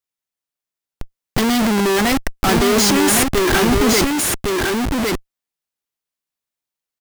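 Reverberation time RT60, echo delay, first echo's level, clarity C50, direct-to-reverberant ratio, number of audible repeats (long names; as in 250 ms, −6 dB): no reverb audible, 1,109 ms, −3.0 dB, no reverb audible, no reverb audible, 1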